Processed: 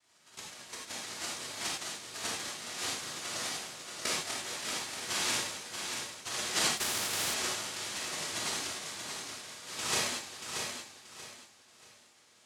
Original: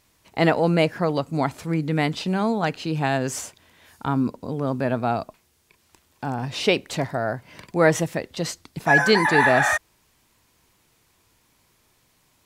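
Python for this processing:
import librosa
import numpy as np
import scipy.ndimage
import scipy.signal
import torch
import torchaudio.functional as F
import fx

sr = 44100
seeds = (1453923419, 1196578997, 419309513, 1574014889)

p1 = fx.reverse_delay_fb(x, sr, ms=102, feedback_pct=50, wet_db=-1.5)
p2 = fx.auto_swell(p1, sr, attack_ms=428.0, at=(5.07, 6.24), fade=0.02)
p3 = fx.tremolo_shape(p2, sr, shape='saw_up', hz=8.6, depth_pct=35)
p4 = fx.over_compress(p3, sr, threshold_db=-26.0, ratio=-0.5)
p5 = fx.double_bandpass(p4, sr, hz=2100.0, octaves=1.5)
p6 = fx.noise_vocoder(p5, sr, seeds[0], bands=1)
p7 = p6 + fx.echo_feedback(p6, sr, ms=632, feedback_pct=29, wet_db=-6, dry=0)
p8 = fx.rev_gated(p7, sr, seeds[1], gate_ms=120, shape='flat', drr_db=-3.5)
y = fx.spectral_comp(p8, sr, ratio=2.0, at=(6.77, 7.34))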